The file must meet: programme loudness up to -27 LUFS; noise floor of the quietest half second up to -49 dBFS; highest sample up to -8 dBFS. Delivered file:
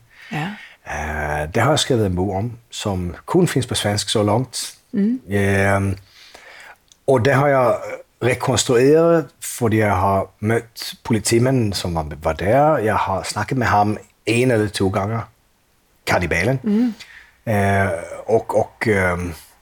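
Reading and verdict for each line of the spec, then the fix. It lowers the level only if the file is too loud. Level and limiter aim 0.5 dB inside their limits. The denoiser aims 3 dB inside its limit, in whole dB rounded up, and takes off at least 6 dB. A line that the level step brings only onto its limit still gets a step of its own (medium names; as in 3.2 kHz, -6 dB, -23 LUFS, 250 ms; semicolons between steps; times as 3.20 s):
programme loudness -19.0 LUFS: fail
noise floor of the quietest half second -60 dBFS: pass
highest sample -5.5 dBFS: fail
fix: trim -8.5 dB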